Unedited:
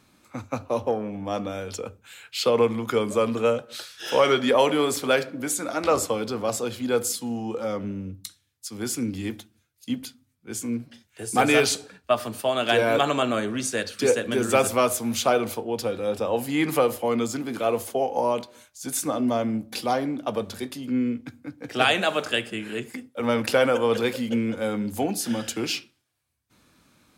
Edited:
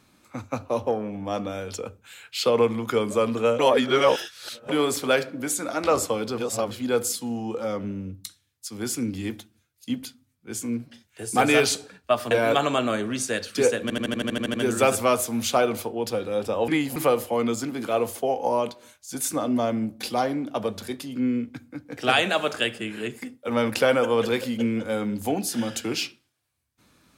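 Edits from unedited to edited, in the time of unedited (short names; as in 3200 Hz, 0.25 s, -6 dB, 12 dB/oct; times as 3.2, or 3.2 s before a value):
3.59–4.69 reverse
6.38–6.71 reverse
12.31–12.75 cut
14.26 stutter 0.08 s, 10 plays
16.4–16.68 reverse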